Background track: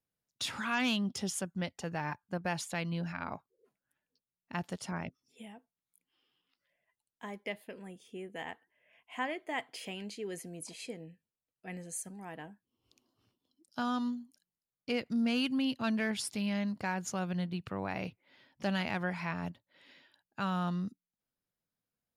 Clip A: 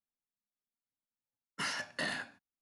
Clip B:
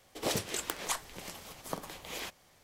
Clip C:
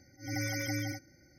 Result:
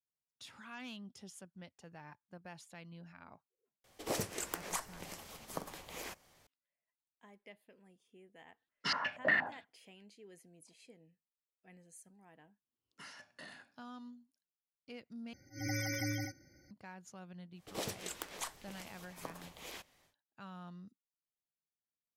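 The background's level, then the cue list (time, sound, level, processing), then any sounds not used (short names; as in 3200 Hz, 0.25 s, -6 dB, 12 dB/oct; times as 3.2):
background track -16.5 dB
3.84 add B -3.5 dB + dynamic EQ 3500 Hz, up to -7 dB, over -52 dBFS, Q 1.7
7.26 add A -1 dB + stepped low-pass 8.4 Hz 630–4700 Hz
11.4 add A -16 dB
15.33 replace with C -2.5 dB
17.52 add B -8 dB, fades 0.10 s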